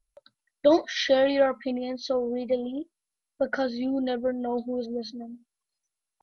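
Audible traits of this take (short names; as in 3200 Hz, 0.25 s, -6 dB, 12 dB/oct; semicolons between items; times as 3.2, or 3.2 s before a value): MP2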